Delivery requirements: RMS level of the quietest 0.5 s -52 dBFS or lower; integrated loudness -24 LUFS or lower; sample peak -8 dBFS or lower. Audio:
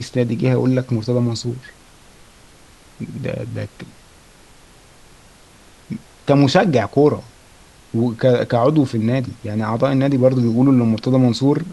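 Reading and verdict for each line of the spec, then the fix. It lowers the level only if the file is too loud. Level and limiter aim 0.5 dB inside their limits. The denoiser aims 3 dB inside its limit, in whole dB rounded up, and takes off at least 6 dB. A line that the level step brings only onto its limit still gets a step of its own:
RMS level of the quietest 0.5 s -47 dBFS: fail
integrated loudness -17.5 LUFS: fail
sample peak -2.0 dBFS: fail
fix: trim -7 dB

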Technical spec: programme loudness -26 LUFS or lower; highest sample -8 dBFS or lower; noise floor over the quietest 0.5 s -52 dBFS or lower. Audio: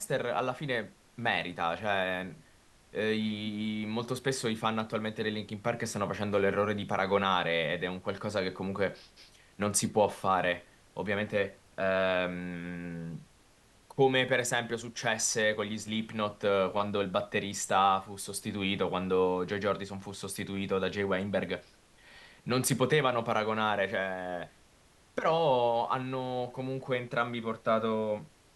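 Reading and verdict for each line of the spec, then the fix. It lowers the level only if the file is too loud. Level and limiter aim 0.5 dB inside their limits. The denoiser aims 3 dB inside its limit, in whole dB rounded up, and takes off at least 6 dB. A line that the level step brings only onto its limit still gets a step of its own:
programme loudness -31.0 LUFS: pass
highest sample -12.5 dBFS: pass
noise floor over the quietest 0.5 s -62 dBFS: pass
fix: none needed

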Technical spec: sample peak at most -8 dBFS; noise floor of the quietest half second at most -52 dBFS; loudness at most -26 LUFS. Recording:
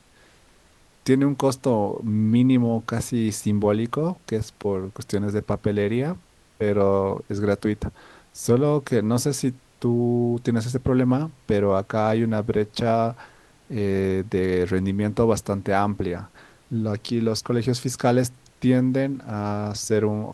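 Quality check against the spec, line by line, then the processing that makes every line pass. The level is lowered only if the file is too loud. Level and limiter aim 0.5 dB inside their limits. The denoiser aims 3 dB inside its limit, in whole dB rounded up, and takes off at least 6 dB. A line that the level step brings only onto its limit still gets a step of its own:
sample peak -6.0 dBFS: fail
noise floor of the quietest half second -56 dBFS: pass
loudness -23.5 LUFS: fail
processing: trim -3 dB

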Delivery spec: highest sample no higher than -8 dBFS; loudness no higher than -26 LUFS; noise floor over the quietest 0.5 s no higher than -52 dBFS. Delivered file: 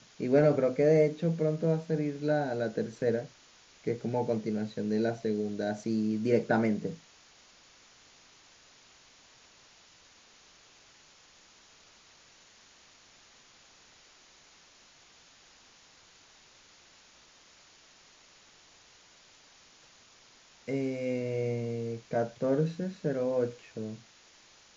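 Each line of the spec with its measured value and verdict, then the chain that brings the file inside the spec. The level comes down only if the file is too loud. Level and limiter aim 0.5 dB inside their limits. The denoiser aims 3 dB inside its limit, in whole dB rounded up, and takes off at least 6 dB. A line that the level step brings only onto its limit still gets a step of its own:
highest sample -12.0 dBFS: pass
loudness -30.5 LUFS: pass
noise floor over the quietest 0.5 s -59 dBFS: pass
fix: none needed

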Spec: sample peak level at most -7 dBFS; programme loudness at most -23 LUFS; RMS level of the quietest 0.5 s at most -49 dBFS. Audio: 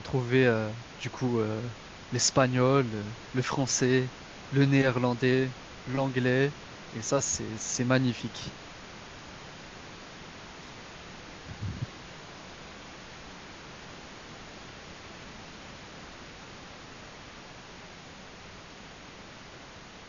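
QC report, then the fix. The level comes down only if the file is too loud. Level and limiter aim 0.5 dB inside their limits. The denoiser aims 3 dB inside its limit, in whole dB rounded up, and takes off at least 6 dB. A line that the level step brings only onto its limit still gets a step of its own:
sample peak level -8.5 dBFS: pass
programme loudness -28.5 LUFS: pass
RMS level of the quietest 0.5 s -47 dBFS: fail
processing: noise reduction 6 dB, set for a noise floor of -47 dBFS

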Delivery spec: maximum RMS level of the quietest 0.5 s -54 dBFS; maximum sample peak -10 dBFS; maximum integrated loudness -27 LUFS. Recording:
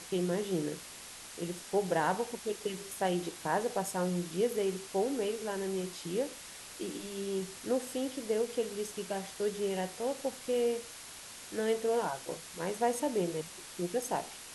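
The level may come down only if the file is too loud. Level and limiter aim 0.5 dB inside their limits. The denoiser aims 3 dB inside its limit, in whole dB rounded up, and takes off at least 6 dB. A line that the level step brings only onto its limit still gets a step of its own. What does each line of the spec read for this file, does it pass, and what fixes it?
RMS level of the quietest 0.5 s -48 dBFS: fail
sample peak -17.5 dBFS: pass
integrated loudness -34.5 LUFS: pass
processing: noise reduction 9 dB, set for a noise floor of -48 dBFS

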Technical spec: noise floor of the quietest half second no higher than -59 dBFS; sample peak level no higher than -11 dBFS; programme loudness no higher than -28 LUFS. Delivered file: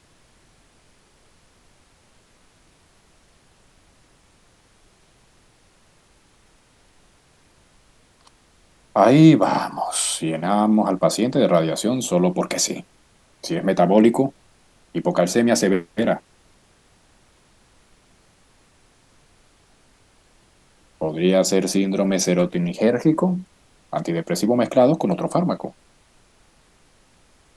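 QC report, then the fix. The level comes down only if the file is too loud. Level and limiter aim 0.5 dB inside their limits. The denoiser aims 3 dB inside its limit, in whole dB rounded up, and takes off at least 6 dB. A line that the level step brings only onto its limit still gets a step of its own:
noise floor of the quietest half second -57 dBFS: fail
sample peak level -1.5 dBFS: fail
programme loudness -19.5 LUFS: fail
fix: trim -9 dB; peak limiter -11.5 dBFS

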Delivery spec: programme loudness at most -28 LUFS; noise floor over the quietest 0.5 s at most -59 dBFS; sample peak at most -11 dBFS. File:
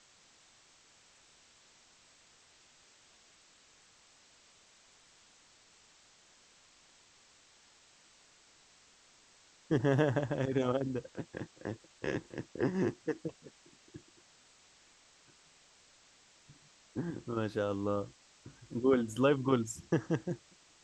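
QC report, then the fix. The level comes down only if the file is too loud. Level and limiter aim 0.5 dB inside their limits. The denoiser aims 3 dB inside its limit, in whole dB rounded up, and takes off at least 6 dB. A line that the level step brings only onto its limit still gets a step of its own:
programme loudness -34.5 LUFS: pass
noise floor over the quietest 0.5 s -64 dBFS: pass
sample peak -15.5 dBFS: pass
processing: none needed

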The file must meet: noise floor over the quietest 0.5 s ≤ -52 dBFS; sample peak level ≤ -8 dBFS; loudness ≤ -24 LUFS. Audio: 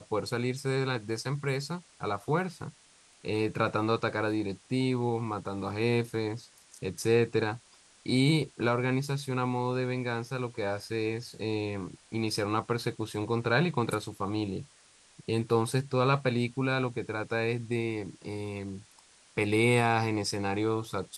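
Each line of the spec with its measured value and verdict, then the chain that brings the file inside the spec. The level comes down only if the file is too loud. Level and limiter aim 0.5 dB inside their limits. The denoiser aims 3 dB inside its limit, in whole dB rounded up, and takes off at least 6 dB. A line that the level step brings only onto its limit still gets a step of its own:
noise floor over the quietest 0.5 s -60 dBFS: pass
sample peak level -11.5 dBFS: pass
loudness -30.5 LUFS: pass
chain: none needed

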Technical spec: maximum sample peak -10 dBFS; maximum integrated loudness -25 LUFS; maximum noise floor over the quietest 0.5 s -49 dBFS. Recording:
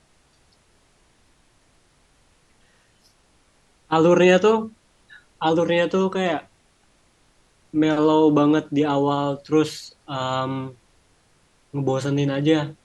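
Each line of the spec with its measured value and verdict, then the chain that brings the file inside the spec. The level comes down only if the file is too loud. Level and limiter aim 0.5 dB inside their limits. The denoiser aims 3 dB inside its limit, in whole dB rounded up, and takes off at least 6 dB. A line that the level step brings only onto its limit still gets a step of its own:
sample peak -4.0 dBFS: fail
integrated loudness -20.5 LUFS: fail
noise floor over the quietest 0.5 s -60 dBFS: pass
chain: trim -5 dB; peak limiter -10.5 dBFS

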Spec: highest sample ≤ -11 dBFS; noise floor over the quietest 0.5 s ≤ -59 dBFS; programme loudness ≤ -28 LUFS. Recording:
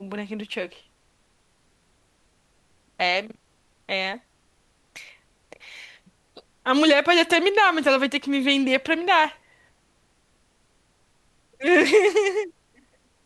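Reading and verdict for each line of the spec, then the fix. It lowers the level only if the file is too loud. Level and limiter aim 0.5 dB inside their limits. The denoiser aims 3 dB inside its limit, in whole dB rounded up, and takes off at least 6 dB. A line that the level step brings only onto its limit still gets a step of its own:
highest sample -5.5 dBFS: fail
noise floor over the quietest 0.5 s -64 dBFS: pass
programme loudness -20.5 LUFS: fail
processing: trim -8 dB

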